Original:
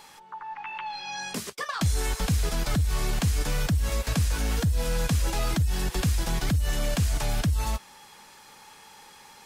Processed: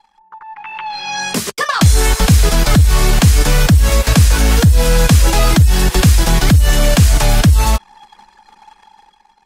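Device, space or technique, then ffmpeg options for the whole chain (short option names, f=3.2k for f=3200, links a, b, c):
voice memo with heavy noise removal: -af "anlmdn=0.0251,dynaudnorm=f=210:g=9:m=13dB,volume=3dB"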